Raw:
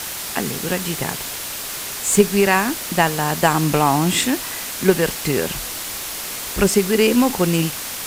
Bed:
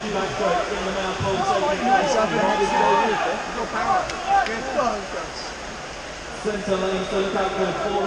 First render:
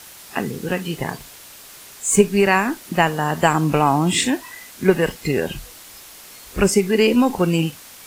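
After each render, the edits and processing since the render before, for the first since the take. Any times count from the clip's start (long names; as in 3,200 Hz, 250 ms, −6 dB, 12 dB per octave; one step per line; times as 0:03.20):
noise reduction from a noise print 13 dB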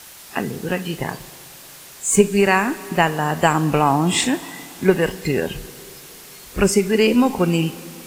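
four-comb reverb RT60 3.3 s, combs from 29 ms, DRR 16 dB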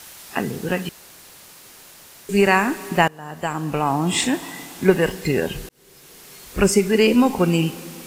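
0:00.89–0:02.29: fill with room tone
0:03.08–0:04.47: fade in, from −21.5 dB
0:05.69–0:06.79: fade in equal-power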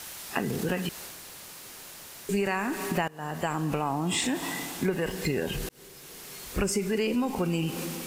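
transient designer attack −1 dB, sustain +4 dB
downward compressor 6 to 1, threshold −25 dBFS, peak gain reduction 14.5 dB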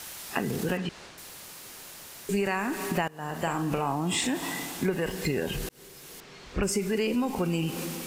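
0:00.77–0:01.18: high-frequency loss of the air 110 metres
0:03.25–0:03.95: double-tracking delay 42 ms −8 dB
0:06.20–0:06.63: high-frequency loss of the air 150 metres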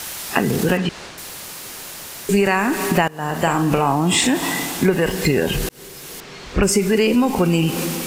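level +11 dB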